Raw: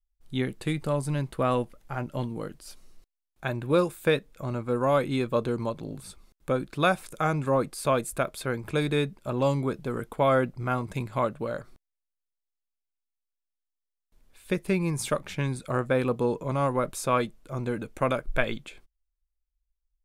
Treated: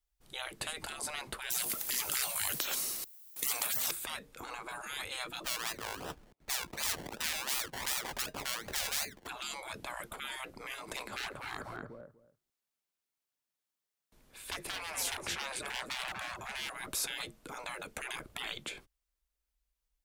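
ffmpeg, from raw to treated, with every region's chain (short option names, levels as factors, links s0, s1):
-filter_complex "[0:a]asettb=1/sr,asplit=3[s0][s1][s2];[s0]atrim=end=1.504[s3];[s1]atrim=start=1.5:end=3.91,asetpts=PTS-STARTPTS,afade=t=in:d=0.004:c=qsin,afade=t=out:st=2.406:d=0.004:c=qsin,aeval=exprs='0.251*sin(PI/2*3.16*val(0)/0.251)':c=same,aemphasis=mode=production:type=riaa[s4];[s2]atrim=start=3.906[s5];[s3][s4]acrossfade=d=0.004:c1=hsin:c2=qsin[s6];[s6][s5]acrossfade=d=0.004:c1=qsin:c2=hsin,asettb=1/sr,asplit=3[s7][s8][s9];[s7]atrim=end=5.444[s10];[s8]atrim=start=5.44:end=9.27,asetpts=PTS-STARTPTS,afade=t=in:d=0.004:c=qsin,afade=t=out:st=3.826:d=0.004:c=qsin,equalizer=f=1300:w=0.97:g=-14.5,acrusher=samples=28:mix=1:aa=0.000001:lfo=1:lforange=16.8:lforate=2.7[s11];[s9]atrim=start=9.266[s12];[s10][s11]acrossfade=d=0.004:c1=hsin:c2=qsin[s13];[s13][s12]acrossfade=d=0.004:c1=qsin:c2=hsin,asettb=1/sr,asplit=3[s14][s15][s16];[s14]atrim=end=10.894[s17];[s15]atrim=start=10.89:end=16.7,asetpts=PTS-STARTPTS,afade=t=in:d=0.004:c=qsin,afade=t=out:st=5.806:d=0.004:c=qsin,volume=17.8,asoftclip=hard,volume=0.0562,asplit=2[s18][s19];[s19]adelay=244,lowpass=f=1300:p=1,volume=0.501,asplit=2[s20][s21];[s21]adelay=244,lowpass=f=1300:p=1,volume=0.16,asplit=2[s22][s23];[s23]adelay=244,lowpass=f=1300:p=1,volume=0.16[s24];[s18][s20][s22][s24]amix=inputs=4:normalize=0,atrim=end_sample=256221[s25];[s16]atrim=start=16.696[s26];[s17][s25]acrossfade=d=0.004:c1=hsin:c2=qsin[s27];[s27][s26]acrossfade=d=0.004:c1=qsin:c2=hsin,acrossover=split=240|3000[s28][s29][s30];[s29]acompressor=threshold=0.0501:ratio=3[s31];[s28][s31][s30]amix=inputs=3:normalize=0,highpass=f=110:p=1,afftfilt=real='re*lt(hypot(re,im),0.0282)':imag='im*lt(hypot(re,im),0.0282)':win_size=1024:overlap=0.75,volume=2"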